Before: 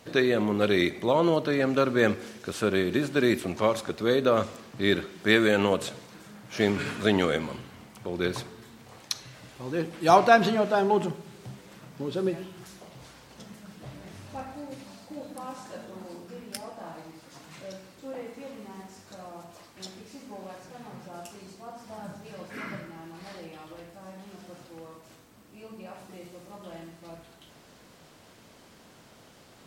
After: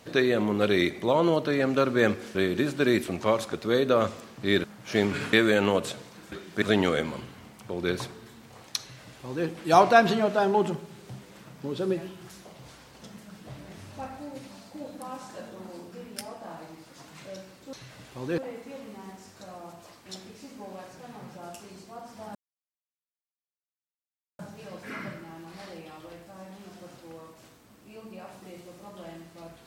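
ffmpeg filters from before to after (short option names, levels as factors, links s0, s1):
-filter_complex "[0:a]asplit=9[s0][s1][s2][s3][s4][s5][s6][s7][s8];[s0]atrim=end=2.352[s9];[s1]atrim=start=2.708:end=5.002[s10];[s2]atrim=start=6.288:end=6.982[s11];[s3]atrim=start=5.298:end=6.292[s12];[s4]atrim=start=4.998:end=5.302[s13];[s5]atrim=start=6.978:end=18.092[s14];[s6]atrim=start=9.168:end=9.822[s15];[s7]atrim=start=18.088:end=22.06,asetpts=PTS-STARTPTS,afade=t=out:st=3.968:d=0.004:c=hsin,apad=pad_dur=2.04[s16];[s8]atrim=start=22.06,asetpts=PTS-STARTPTS,afade=t=in:d=0.004:c=hsin[s17];[s9][s10]acrossfade=d=0.004:c1=hsin:c2=hsin[s18];[s18][s11]acrossfade=d=0.004:c1=hsin:c2=hsin[s19];[s19][s12]acrossfade=d=0.004:c1=hsin:c2=hsin[s20];[s20][s13]acrossfade=d=0.004:c1=hsin:c2=hsin[s21];[s21][s14]acrossfade=d=0.004:c1=hsin:c2=hsin[s22];[s22][s15]acrossfade=d=0.004:c1=hsin:c2=hsin[s23];[s16][s17]concat=n=2:v=0:a=1[s24];[s23][s24]acrossfade=d=0.004:c1=hsin:c2=hsin"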